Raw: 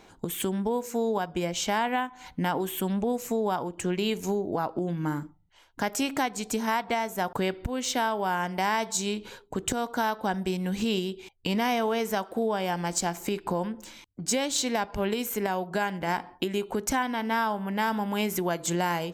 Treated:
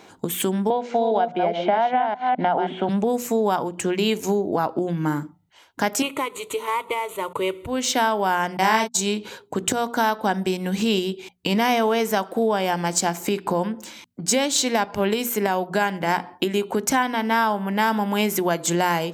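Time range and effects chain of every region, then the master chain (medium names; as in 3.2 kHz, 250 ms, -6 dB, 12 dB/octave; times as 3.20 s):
0.70–2.89 s: chunks repeated in reverse 206 ms, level -6 dB + cabinet simulation 270–2800 Hz, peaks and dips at 300 Hz -8 dB, 480 Hz -5 dB, 680 Hz +9 dB, 1.1 kHz -9 dB, 1.8 kHz -8 dB, 2.6 kHz -9 dB + three bands compressed up and down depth 100%
6.02–7.67 s: CVSD coder 64 kbps + static phaser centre 1.1 kHz, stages 8
8.57–9.01 s: gate -30 dBFS, range -57 dB + doubling 32 ms -5 dB
whole clip: high-pass 120 Hz 12 dB/octave; hum notches 60/120/180/240 Hz; trim +6.5 dB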